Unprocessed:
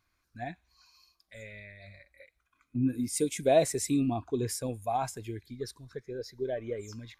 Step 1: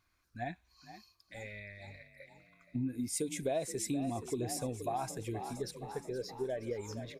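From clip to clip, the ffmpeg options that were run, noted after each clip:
ffmpeg -i in.wav -filter_complex "[0:a]asplit=7[link_01][link_02][link_03][link_04][link_05][link_06][link_07];[link_02]adelay=472,afreqshift=37,volume=-14.5dB[link_08];[link_03]adelay=944,afreqshift=74,volume=-18.8dB[link_09];[link_04]adelay=1416,afreqshift=111,volume=-23.1dB[link_10];[link_05]adelay=1888,afreqshift=148,volume=-27.4dB[link_11];[link_06]adelay=2360,afreqshift=185,volume=-31.7dB[link_12];[link_07]adelay=2832,afreqshift=222,volume=-36dB[link_13];[link_01][link_08][link_09][link_10][link_11][link_12][link_13]amix=inputs=7:normalize=0,acompressor=threshold=-33dB:ratio=4" out.wav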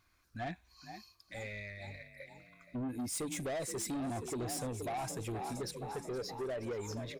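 ffmpeg -i in.wav -af "asoftclip=type=tanh:threshold=-38.5dB,volume=4dB" out.wav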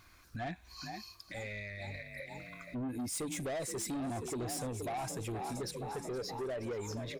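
ffmpeg -i in.wav -filter_complex "[0:a]asplit=2[link_01][link_02];[link_02]acompressor=threshold=-48dB:ratio=6,volume=1dB[link_03];[link_01][link_03]amix=inputs=2:normalize=0,alimiter=level_in=15.5dB:limit=-24dB:level=0:latency=1:release=195,volume=-15.5dB,volume=5dB" out.wav

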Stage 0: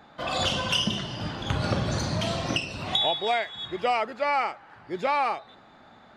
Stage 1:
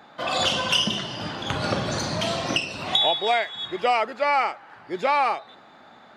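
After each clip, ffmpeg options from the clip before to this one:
ffmpeg -i in.wav -af "highpass=frequency=250:poles=1,volume=4dB" out.wav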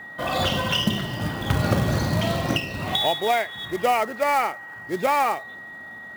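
ffmpeg -i in.wav -af "aemphasis=mode=reproduction:type=bsi,acrusher=bits=4:mode=log:mix=0:aa=0.000001,aeval=exprs='val(0)+0.0141*sin(2*PI*1900*n/s)':channel_layout=same" out.wav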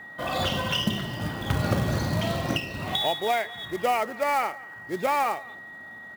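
ffmpeg -i in.wav -filter_complex "[0:a]asplit=2[link_01][link_02];[link_02]adelay=204.1,volume=-22dB,highshelf=frequency=4000:gain=-4.59[link_03];[link_01][link_03]amix=inputs=2:normalize=0,volume=-3.5dB" out.wav

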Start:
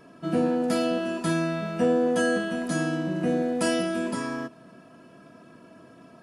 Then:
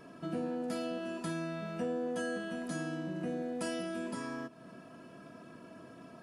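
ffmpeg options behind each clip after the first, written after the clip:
ffmpeg -i in.wav -af "acompressor=threshold=-41dB:ratio=2,volume=-1.5dB" out.wav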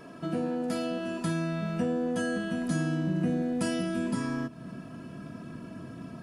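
ffmpeg -i in.wav -af "asubboost=boost=4:cutoff=240,volume=5.5dB" out.wav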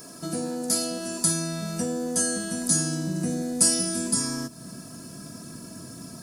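ffmpeg -i in.wav -af "aexciter=amount=10.7:drive=5.9:freq=4400" out.wav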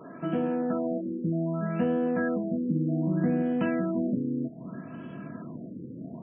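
ffmpeg -i in.wav -af "highpass=130,afftfilt=real='re*lt(b*sr/1024,540*pow(3400/540,0.5+0.5*sin(2*PI*0.64*pts/sr)))':imag='im*lt(b*sr/1024,540*pow(3400/540,0.5+0.5*sin(2*PI*0.64*pts/sr)))':win_size=1024:overlap=0.75,volume=3dB" out.wav

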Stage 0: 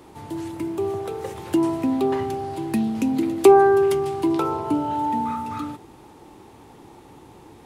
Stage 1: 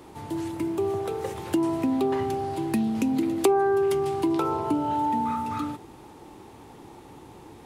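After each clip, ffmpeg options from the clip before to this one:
ffmpeg -i in.wav -af "acompressor=threshold=-22dB:ratio=2.5" out.wav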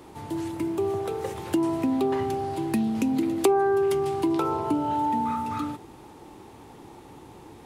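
ffmpeg -i in.wav -af anull out.wav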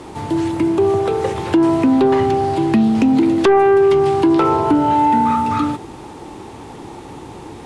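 ffmpeg -i in.wav -filter_complex "[0:a]acrossover=split=4700[link_01][link_02];[link_02]acompressor=threshold=-53dB:ratio=4:attack=1:release=60[link_03];[link_01][link_03]amix=inputs=2:normalize=0,aeval=exprs='0.355*sin(PI/2*2.24*val(0)/0.355)':channel_layout=same,lowpass=frequency=10000:width=0.5412,lowpass=frequency=10000:width=1.3066,volume=1.5dB" out.wav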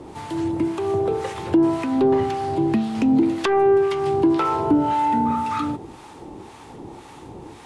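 ffmpeg -i in.wav -filter_complex "[0:a]acrossover=split=810[link_01][link_02];[link_01]aeval=exprs='val(0)*(1-0.7/2+0.7/2*cos(2*PI*1.9*n/s))':channel_layout=same[link_03];[link_02]aeval=exprs='val(0)*(1-0.7/2-0.7/2*cos(2*PI*1.9*n/s))':channel_layout=same[link_04];[link_03][link_04]amix=inputs=2:normalize=0,volume=-2.5dB" out.wav

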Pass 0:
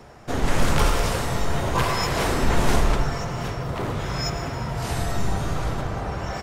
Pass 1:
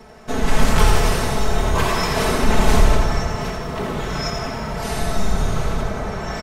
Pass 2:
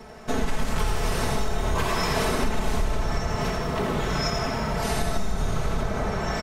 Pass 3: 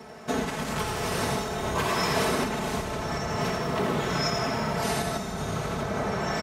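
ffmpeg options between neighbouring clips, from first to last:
ffmpeg -i in.wav -filter_complex "[0:a]aecho=1:1:4.6:0.86,asplit=2[link_01][link_02];[link_02]asplit=7[link_03][link_04][link_05][link_06][link_07][link_08][link_09];[link_03]adelay=85,afreqshift=-35,volume=-6dB[link_10];[link_04]adelay=170,afreqshift=-70,volume=-10.9dB[link_11];[link_05]adelay=255,afreqshift=-105,volume=-15.8dB[link_12];[link_06]adelay=340,afreqshift=-140,volume=-20.6dB[link_13];[link_07]adelay=425,afreqshift=-175,volume=-25.5dB[link_14];[link_08]adelay=510,afreqshift=-210,volume=-30.4dB[link_15];[link_09]adelay=595,afreqshift=-245,volume=-35.3dB[link_16];[link_10][link_11][link_12][link_13][link_14][link_15][link_16]amix=inputs=7:normalize=0[link_17];[link_01][link_17]amix=inputs=2:normalize=0" out.wav
ffmpeg -i in.wav -af "acompressor=threshold=-20dB:ratio=6" out.wav
ffmpeg -i in.wav -af "highpass=110" out.wav

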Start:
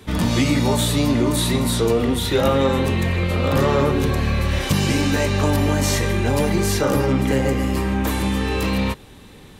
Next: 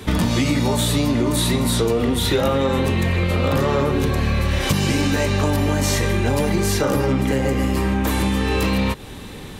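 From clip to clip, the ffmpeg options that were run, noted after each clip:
ffmpeg -i in.wav -af "acompressor=threshold=-25dB:ratio=5,volume=8.5dB" out.wav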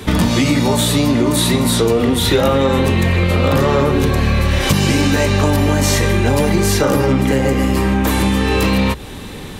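ffmpeg -i in.wav -af "bandreject=frequency=60:width_type=h:width=6,bandreject=frequency=120:width_type=h:width=6,volume=5dB" out.wav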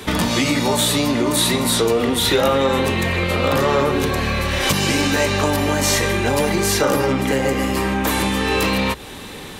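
ffmpeg -i in.wav -af "lowshelf=frequency=260:gain=-10" out.wav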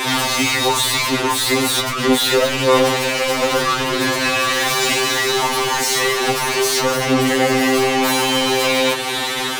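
ffmpeg -i in.wav -filter_complex "[0:a]asplit=2[link_01][link_02];[link_02]highpass=frequency=720:poles=1,volume=33dB,asoftclip=type=tanh:threshold=-3dB[link_03];[link_01][link_03]amix=inputs=2:normalize=0,lowpass=frequency=6500:poles=1,volume=-6dB,afftfilt=real='re*2.45*eq(mod(b,6),0)':imag='im*2.45*eq(mod(b,6),0)':win_size=2048:overlap=0.75,volume=-5dB" out.wav

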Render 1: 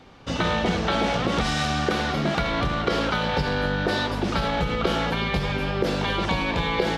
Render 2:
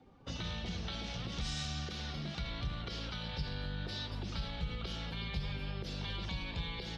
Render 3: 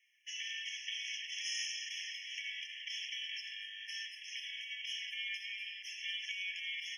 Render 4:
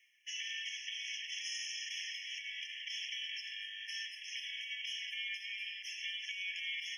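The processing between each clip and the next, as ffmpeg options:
ffmpeg -i in.wav -filter_complex "[0:a]afftdn=noise_reduction=13:noise_floor=-45,acrossover=split=150|3000[link_01][link_02][link_03];[link_02]acompressor=threshold=-38dB:ratio=10[link_04];[link_01][link_04][link_03]amix=inputs=3:normalize=0,volume=-8.5dB" out.wav
ffmpeg -i in.wav -af "afftfilt=real='re*eq(mod(floor(b*sr/1024/1700),2),1)':imag='im*eq(mod(floor(b*sr/1024/1700),2),1)':win_size=1024:overlap=0.75,volume=7dB" out.wav
ffmpeg -i in.wav -af "areverse,acompressor=mode=upward:threshold=-51dB:ratio=2.5,areverse,alimiter=level_in=8dB:limit=-24dB:level=0:latency=1:release=304,volume=-8dB,volume=1.5dB" out.wav

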